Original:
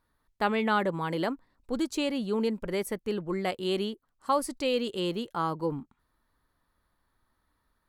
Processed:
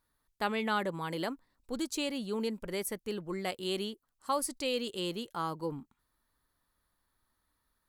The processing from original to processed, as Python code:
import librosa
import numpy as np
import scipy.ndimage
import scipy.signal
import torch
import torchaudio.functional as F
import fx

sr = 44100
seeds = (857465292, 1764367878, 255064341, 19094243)

y = fx.high_shelf(x, sr, hz=3700.0, db=10.0)
y = F.gain(torch.from_numpy(y), -6.0).numpy()